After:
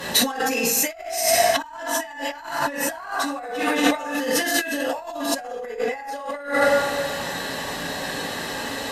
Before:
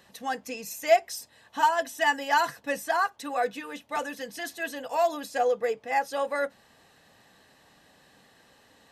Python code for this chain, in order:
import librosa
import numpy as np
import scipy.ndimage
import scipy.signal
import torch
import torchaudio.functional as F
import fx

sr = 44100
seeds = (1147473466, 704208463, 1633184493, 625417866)

y = fx.rev_double_slope(x, sr, seeds[0], early_s=0.6, late_s=2.0, knee_db=-18, drr_db=-8.5)
y = fx.cheby_harmonics(y, sr, harmonics=(4,), levels_db=(-25,), full_scale_db=0.0)
y = fx.over_compress(y, sr, threshold_db=-36.0, ratio=-1.0)
y = F.gain(torch.from_numpy(y), 8.5).numpy()